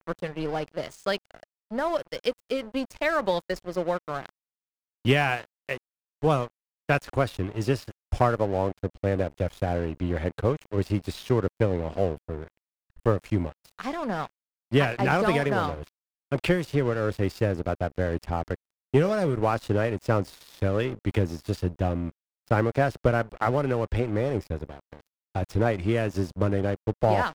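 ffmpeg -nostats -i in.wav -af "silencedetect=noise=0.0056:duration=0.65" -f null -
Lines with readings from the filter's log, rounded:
silence_start: 4.29
silence_end: 5.05 | silence_duration: 0.76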